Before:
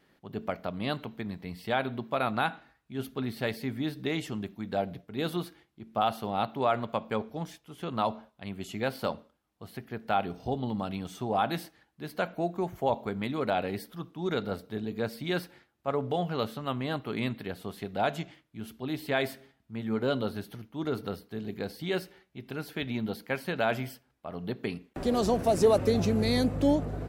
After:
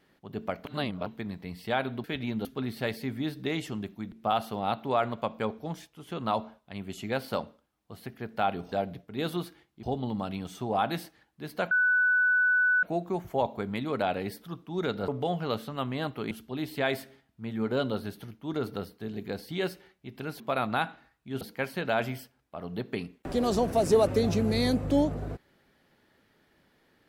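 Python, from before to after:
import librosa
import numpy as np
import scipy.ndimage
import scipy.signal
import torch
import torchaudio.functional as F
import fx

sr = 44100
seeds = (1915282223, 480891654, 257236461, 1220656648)

y = fx.edit(x, sr, fx.reverse_span(start_s=0.65, length_s=0.41),
    fx.swap(start_s=2.04, length_s=1.01, other_s=22.71, other_length_s=0.41),
    fx.move(start_s=4.72, length_s=1.11, to_s=10.43),
    fx.insert_tone(at_s=12.31, length_s=1.12, hz=1490.0, db=-20.5),
    fx.cut(start_s=14.56, length_s=1.41),
    fx.cut(start_s=17.2, length_s=1.42), tone=tone)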